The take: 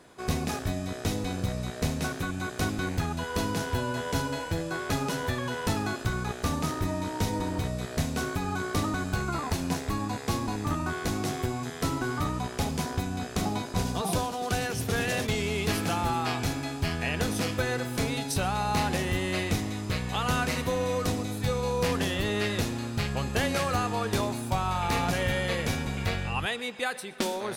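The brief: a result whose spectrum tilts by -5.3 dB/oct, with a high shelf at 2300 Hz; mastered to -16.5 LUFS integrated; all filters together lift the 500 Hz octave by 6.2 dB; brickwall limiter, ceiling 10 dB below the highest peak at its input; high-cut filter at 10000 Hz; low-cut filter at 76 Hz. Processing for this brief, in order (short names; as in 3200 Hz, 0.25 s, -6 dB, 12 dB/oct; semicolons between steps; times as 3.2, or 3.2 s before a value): HPF 76 Hz; LPF 10000 Hz; bell 500 Hz +7.5 dB; high shelf 2300 Hz -5 dB; gain +15 dB; limiter -7 dBFS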